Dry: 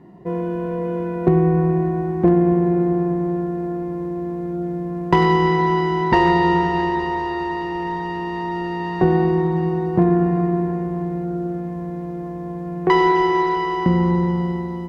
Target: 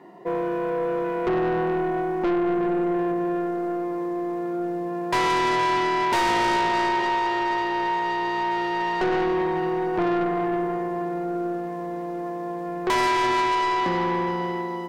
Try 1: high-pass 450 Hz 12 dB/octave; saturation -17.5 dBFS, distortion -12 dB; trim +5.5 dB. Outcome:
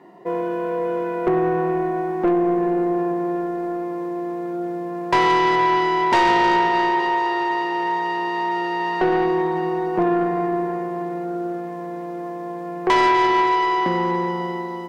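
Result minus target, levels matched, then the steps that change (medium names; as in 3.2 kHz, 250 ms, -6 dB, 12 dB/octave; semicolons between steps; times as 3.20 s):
saturation: distortion -6 dB
change: saturation -25 dBFS, distortion -7 dB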